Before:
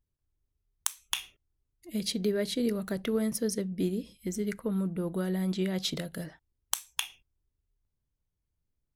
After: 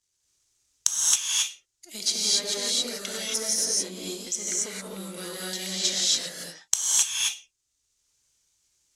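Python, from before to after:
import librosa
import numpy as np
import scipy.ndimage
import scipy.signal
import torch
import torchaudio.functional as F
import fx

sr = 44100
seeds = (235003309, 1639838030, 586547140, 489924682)

y = np.where(x < 0.0, 10.0 ** (-7.0 / 20.0) * x, x)
y = fx.lowpass_res(y, sr, hz=6600.0, q=2.6)
y = fx.tilt_eq(y, sr, slope=4.5)
y = fx.rev_gated(y, sr, seeds[0], gate_ms=300, shape='rising', drr_db=-6.5)
y = fx.band_squash(y, sr, depth_pct=40)
y = F.gain(torch.from_numpy(y), -5.0).numpy()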